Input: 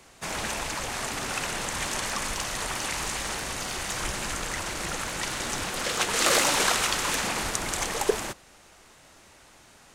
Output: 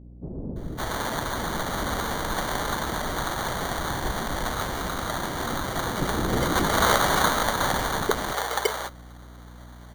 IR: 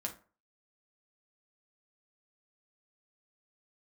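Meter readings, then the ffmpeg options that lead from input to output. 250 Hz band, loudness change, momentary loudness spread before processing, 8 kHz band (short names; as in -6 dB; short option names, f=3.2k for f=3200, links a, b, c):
+7.0 dB, +1.0 dB, 9 LU, -5.0 dB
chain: -filter_complex "[0:a]acrusher=samples=17:mix=1:aa=0.000001,acrossover=split=420[a][b];[b]adelay=560[c];[a][c]amix=inputs=2:normalize=0,aeval=exprs='val(0)+0.00447*(sin(2*PI*60*n/s)+sin(2*PI*2*60*n/s)/2+sin(2*PI*3*60*n/s)/3+sin(2*PI*4*60*n/s)/4+sin(2*PI*5*60*n/s)/5)':c=same,volume=3.5dB"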